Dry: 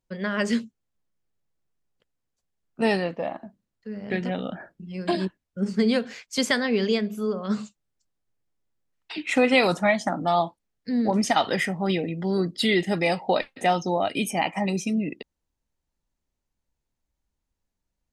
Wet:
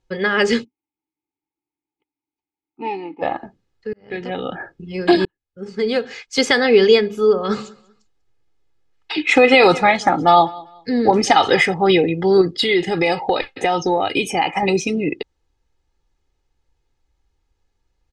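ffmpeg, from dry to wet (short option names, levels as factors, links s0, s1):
-filter_complex "[0:a]asplit=3[s0][s1][s2];[s0]afade=t=out:st=0.63:d=0.02[s3];[s1]asplit=3[s4][s5][s6];[s4]bandpass=f=300:t=q:w=8,volume=1[s7];[s5]bandpass=f=870:t=q:w=8,volume=0.501[s8];[s6]bandpass=f=2240:t=q:w=8,volume=0.355[s9];[s7][s8][s9]amix=inputs=3:normalize=0,afade=t=in:st=0.63:d=0.02,afade=t=out:st=3.21:d=0.02[s10];[s2]afade=t=in:st=3.21:d=0.02[s11];[s3][s10][s11]amix=inputs=3:normalize=0,asettb=1/sr,asplit=3[s12][s13][s14];[s12]atrim=end=7.214[s15];[s13]atrim=start=7.21:end=11.74,asetpts=PTS-STARTPTS,afade=t=in:d=0.004:c=qsin,afade=t=out:st=4.526:d=0.004:c=qsin,aecho=1:1:194|388:0.075|0.0187,atrim=end_sample=199773[s16];[s14]atrim=start=11.736[s17];[s15][s16]acrossfade=d=0.004:c1=hsin:c2=qsin[s18];[s18][s17]acrossfade=d=0.004:c1=qsin:c2=hsin,asettb=1/sr,asplit=3[s19][s20][s21];[s19]atrim=end=12.414[s22];[s20]atrim=start=12.41:end=14.63,asetpts=PTS-STARTPTS,afade=t=in:d=0.004:c=qsin,afade=t=out:st=2.216:d=0.004:c=qsin,acompressor=threshold=0.0631:ratio=6:attack=3.2:release=140:knee=1:detection=peak[s23];[s21]atrim=start=14.626[s24];[s22][s23]acrossfade=d=0.004:c1=hsin:c2=qsin[s25];[s25][s24]acrossfade=d=0.004:c1=qsin:c2=hsin,asplit=3[s26][s27][s28];[s26]atrim=end=3.93,asetpts=PTS-STARTPTS,afade=t=out:st=3.926:d=0.004:c=hsin[s29];[s27]atrim=start=3.93:end=5.25,asetpts=PTS-STARTPTS,afade=t=in:d=0.81,afade=t=out:st=1.316:d=0.004:c=hsin[s30];[s28]atrim=start=5.25,asetpts=PTS-STARTPTS,afade=t=in:d=1.45[s31];[s29][s30][s31]concat=n=3:v=0:a=1,lowpass=5500,aecho=1:1:2.4:0.63,alimiter=level_in=3.55:limit=0.891:release=50:level=0:latency=1,volume=0.891"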